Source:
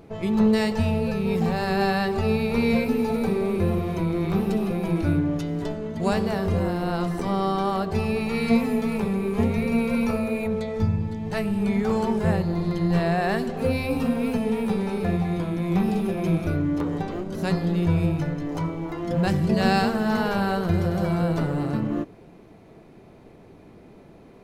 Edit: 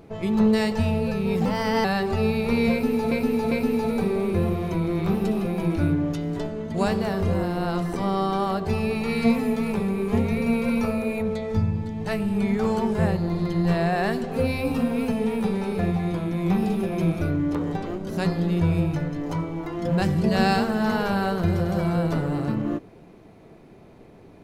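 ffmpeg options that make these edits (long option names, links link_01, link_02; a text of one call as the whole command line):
ffmpeg -i in.wav -filter_complex "[0:a]asplit=5[link_01][link_02][link_03][link_04][link_05];[link_01]atrim=end=1.454[link_06];[link_02]atrim=start=1.45:end=1.9,asetpts=PTS-STARTPTS,asetrate=50274,aresample=44100[link_07];[link_03]atrim=start=1.896:end=3.172[link_08];[link_04]atrim=start=2.768:end=3.172[link_09];[link_05]atrim=start=2.768[link_10];[link_06][link_07]acrossfade=duration=0.004:curve1=hsin:curve2=hsin[link_11];[link_11][link_08]acrossfade=duration=0.004:curve1=hsin:curve2=hsin[link_12];[link_12][link_09]acrossfade=duration=0.004:curve1=hsin:curve2=hsin[link_13];[link_13][link_10]acrossfade=duration=0.004:curve1=hsin:curve2=hsin" out.wav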